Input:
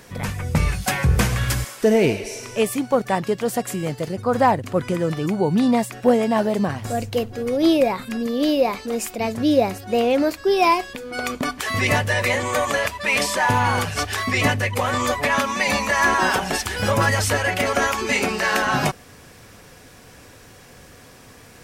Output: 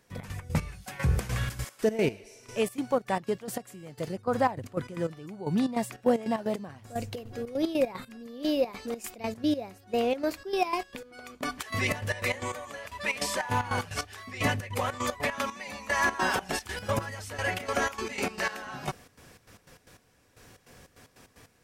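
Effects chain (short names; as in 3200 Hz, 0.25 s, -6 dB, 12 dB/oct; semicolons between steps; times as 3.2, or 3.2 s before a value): step gate ".x.x.x....xx.xx" 151 bpm -12 dB; gain -7.5 dB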